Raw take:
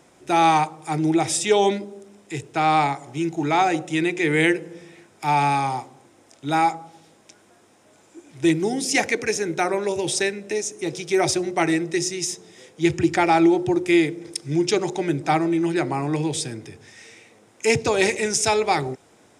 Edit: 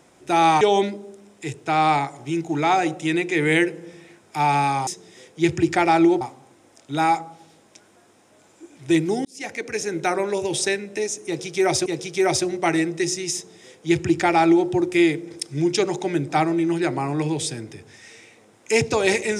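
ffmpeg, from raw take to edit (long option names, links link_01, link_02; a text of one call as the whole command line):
ffmpeg -i in.wav -filter_complex "[0:a]asplit=6[link_01][link_02][link_03][link_04][link_05][link_06];[link_01]atrim=end=0.612[link_07];[link_02]atrim=start=1.488:end=5.752[link_08];[link_03]atrim=start=12.278:end=13.622[link_09];[link_04]atrim=start=5.748:end=8.79,asetpts=PTS-STARTPTS,afade=type=out:start_time=3.038:duration=0.004:curve=hsin[link_10];[link_05]atrim=start=8.79:end=11.402,asetpts=PTS-STARTPTS,afade=type=in:duration=0.76[link_11];[link_06]atrim=start=10.798[link_12];[link_07][link_08]acrossfade=duration=0.004:curve1=hsin:curve2=hsin[link_13];[link_13][link_09]acrossfade=duration=0.004:curve1=hsin:curve2=hsin[link_14];[link_10][link_11]concat=n=2:v=0:a=1[link_15];[link_14][link_15]acrossfade=duration=0.004:curve1=hsin:curve2=hsin[link_16];[link_16][link_12]acrossfade=duration=0.004:curve1=hsin:curve2=hsin" out.wav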